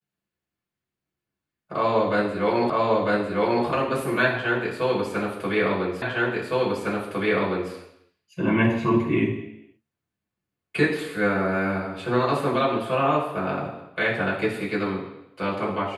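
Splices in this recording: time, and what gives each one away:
2.7 repeat of the last 0.95 s
6.02 repeat of the last 1.71 s

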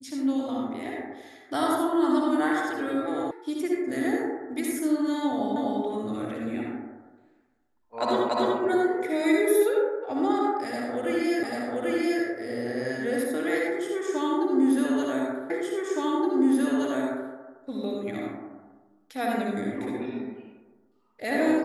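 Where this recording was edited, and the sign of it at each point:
3.31 sound cut off
5.56 repeat of the last 0.25 s
8.29 repeat of the last 0.29 s
11.43 repeat of the last 0.79 s
15.5 repeat of the last 1.82 s

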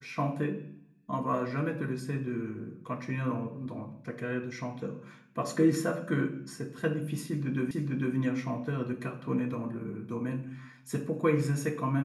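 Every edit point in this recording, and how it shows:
7.71 repeat of the last 0.45 s

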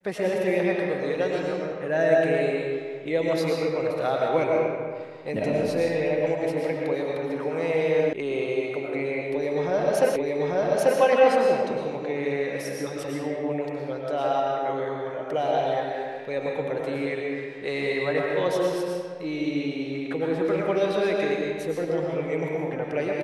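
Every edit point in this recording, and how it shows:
8.13 sound cut off
10.16 repeat of the last 0.84 s

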